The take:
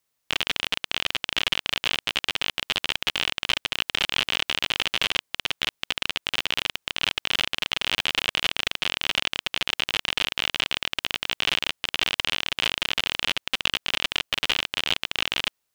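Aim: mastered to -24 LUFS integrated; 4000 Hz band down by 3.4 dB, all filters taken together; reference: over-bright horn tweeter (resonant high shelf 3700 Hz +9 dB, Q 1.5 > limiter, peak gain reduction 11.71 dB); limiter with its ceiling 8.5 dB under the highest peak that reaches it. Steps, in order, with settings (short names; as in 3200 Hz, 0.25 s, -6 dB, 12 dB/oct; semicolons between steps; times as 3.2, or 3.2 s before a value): bell 4000 Hz -7.5 dB; limiter -16 dBFS; resonant high shelf 3700 Hz +9 dB, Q 1.5; gain +21 dB; limiter -1.5 dBFS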